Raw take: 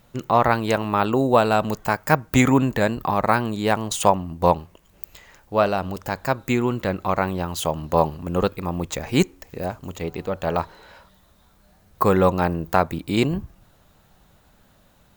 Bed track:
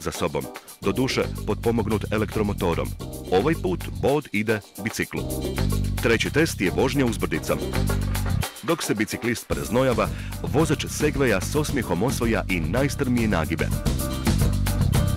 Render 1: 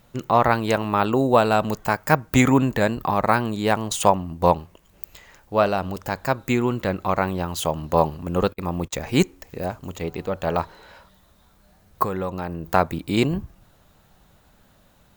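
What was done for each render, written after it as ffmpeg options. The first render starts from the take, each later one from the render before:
-filter_complex "[0:a]asettb=1/sr,asplit=3[s0][s1][s2];[s0]atrim=end=8.354[s3];[s1]atrim=start=8.35:end=9,asetpts=PTS-STARTPTS,afade=t=in:d=0.004:c=qsin,afade=t=out:st=0.646:d=0.004:c=qsin,agate=range=0.0447:threshold=0.0178:ratio=16:release=100:detection=peak[s4];[s2]atrim=start=8.996[s5];[s3][s4]acrossfade=d=0.004:c1=hsin:c2=qsin[s6];[s6][s5]acrossfade=d=0.004:c1=qsin:c2=hsin,asettb=1/sr,asplit=3[s7][s8][s9];[s7]atrim=end=12.044[s10];[s8]atrim=start=12.04:end=12.7,asetpts=PTS-STARTPTS,afade=t=in:d=0.004:c=qsin,afade=t=out:st=0.656:d=0.004:c=qsin,acompressor=threshold=0.0398:ratio=2.5:attack=3.2:release=140:knee=1:detection=peak[s11];[s9]atrim=start=12.696[s12];[s10][s11]acrossfade=d=0.004:c1=hsin:c2=qsin[s13];[s13][s12]acrossfade=d=0.004:c1=qsin:c2=hsin"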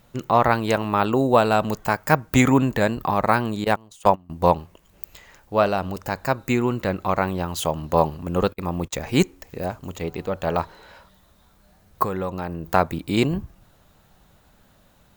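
-filter_complex "[0:a]asettb=1/sr,asplit=3[s0][s1][s2];[s0]atrim=end=3.644[s3];[s1]atrim=start=3.64:end=4.3,asetpts=PTS-STARTPTS,afade=t=in:d=0.004:c=qsin,afade=t=out:st=0.656:d=0.004:c=qsin,agate=range=0.0891:threshold=0.0891:ratio=16:release=100:detection=peak[s4];[s2]atrim=start=4.296[s5];[s3][s4]acrossfade=d=0.004:c1=hsin:c2=qsin[s6];[s6][s5]acrossfade=d=0.004:c1=qsin:c2=hsin,asettb=1/sr,asplit=3[s7][s8][s9];[s7]atrim=end=5.934[s10];[s8]atrim=start=5.93:end=6.88,asetpts=PTS-STARTPTS,afade=t=in:d=0.004:c=qsin,afade=t=out:st=0.946:d=0.004:c=qsin,bandreject=f=3300:w=12[s11];[s9]atrim=start=6.876[s12];[s10][s11]acrossfade=d=0.004:c1=hsin:c2=qsin[s13];[s13][s12]acrossfade=d=0.004:c1=qsin:c2=hsin"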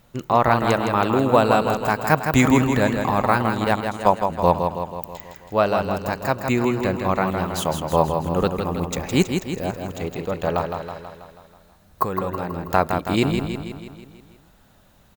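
-af "aecho=1:1:162|324|486|648|810|972|1134:0.501|0.286|0.163|0.0928|0.0529|0.0302|0.0172"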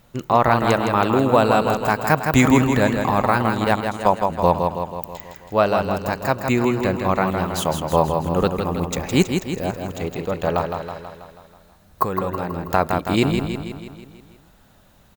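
-af "volume=1.19,alimiter=limit=0.708:level=0:latency=1"

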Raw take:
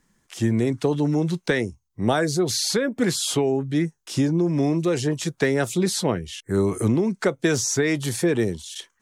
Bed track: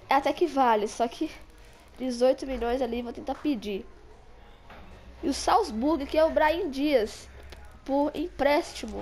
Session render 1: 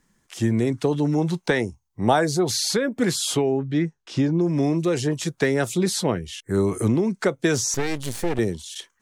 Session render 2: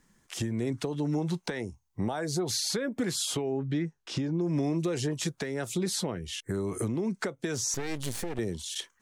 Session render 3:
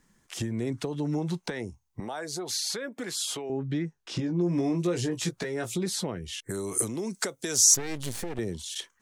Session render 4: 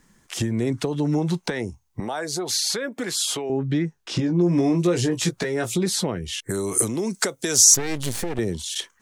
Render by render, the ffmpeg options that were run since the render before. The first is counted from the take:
-filter_complex "[0:a]asettb=1/sr,asplit=3[s0][s1][s2];[s0]atrim=end=1.184[s3];[s1]atrim=start=1.18:end=2.61,asetpts=PTS-STARTPTS,afade=t=in:d=0.004:c=qsin,afade=t=out:st=1.426:d=0.004:c=qsin,equalizer=f=840:w=2.4:g=7.5[s4];[s2]atrim=start=2.606[s5];[s3][s4]acrossfade=d=0.004:c1=hsin:c2=qsin[s6];[s6][s5]acrossfade=d=0.004:c1=qsin:c2=hsin,asettb=1/sr,asplit=3[s7][s8][s9];[s7]atrim=end=3.424[s10];[s8]atrim=start=3.42:end=4.41,asetpts=PTS-STARTPTS,afade=t=in:d=0.004:c=qsin,afade=t=out:st=0.986:d=0.004:c=qsin,lowpass=4300[s11];[s9]atrim=start=4.406[s12];[s10][s11]acrossfade=d=0.004:c1=hsin:c2=qsin[s13];[s13][s12]acrossfade=d=0.004:c1=qsin:c2=hsin,asettb=1/sr,asplit=3[s14][s15][s16];[s14]atrim=end=7.744[s17];[s15]atrim=start=7.74:end=8.39,asetpts=PTS-STARTPTS,afade=t=in:d=0.004:c=qsin,afade=t=out:st=0.646:d=0.004:c=qsin,aeval=exprs='max(val(0),0)':c=same[s18];[s16]atrim=start=8.386[s19];[s17][s18]acrossfade=d=0.004:c1=hsin:c2=qsin[s20];[s20][s19]acrossfade=d=0.004:c1=qsin:c2=hsin"
-af "acompressor=threshold=0.0631:ratio=6,alimiter=limit=0.0944:level=0:latency=1:release=395"
-filter_complex "[0:a]asettb=1/sr,asplit=3[s0][s1][s2];[s0]atrim=end=2.004[s3];[s1]atrim=start=2:end=3.5,asetpts=PTS-STARTPTS,afade=t=in:d=0.004:c=qsin,afade=t=out:st=1.496:d=0.004:c=qsin,highpass=f=560:p=1[s4];[s2]atrim=start=3.496[s5];[s3][s4]acrossfade=d=0.004:c1=hsin:c2=qsin[s6];[s6][s5]acrossfade=d=0.004:c1=qsin:c2=hsin,asettb=1/sr,asplit=3[s7][s8][s9];[s7]atrim=end=4.174[s10];[s8]atrim=start=4.17:end=5.76,asetpts=PTS-STARTPTS,afade=t=in:d=0.004:c=qsin,afade=t=out:st=1.586:d=0.004:c=qsin,asplit=2[s11][s12];[s12]adelay=17,volume=0.562[s13];[s11][s13]amix=inputs=2:normalize=0,atrim=end_sample=70119[s14];[s9]atrim=start=5.756[s15];[s10][s14]acrossfade=d=0.004:c1=hsin:c2=qsin[s16];[s16][s15]acrossfade=d=0.004:c1=qsin:c2=hsin,asplit=3[s17][s18][s19];[s17]afade=t=out:st=6.49:d=0.02[s20];[s18]bass=f=250:g=-6,treble=f=4000:g=15,afade=t=in:st=6.49:d=0.02,afade=t=out:st=7.75:d=0.02[s21];[s19]afade=t=in:st=7.75:d=0.02[s22];[s20][s21][s22]amix=inputs=3:normalize=0"
-af "volume=2.24,alimiter=limit=0.708:level=0:latency=1"

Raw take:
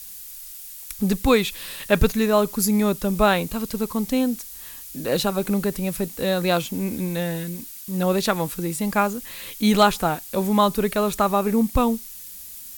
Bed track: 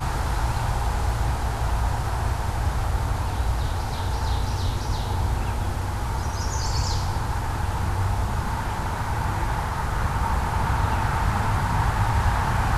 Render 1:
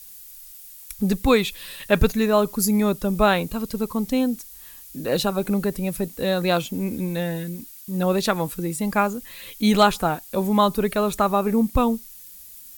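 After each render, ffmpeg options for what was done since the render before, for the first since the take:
-af "afftdn=nr=6:nf=-39"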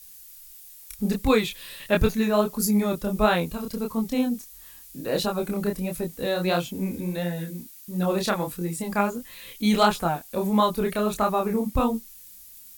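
-af "flanger=delay=22.5:depth=7:speed=1.5"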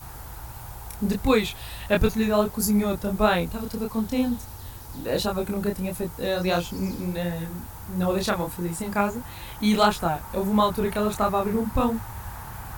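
-filter_complex "[1:a]volume=0.168[s0];[0:a][s0]amix=inputs=2:normalize=0"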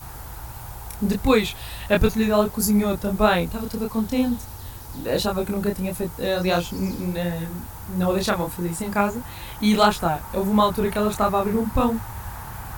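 -af "volume=1.33"

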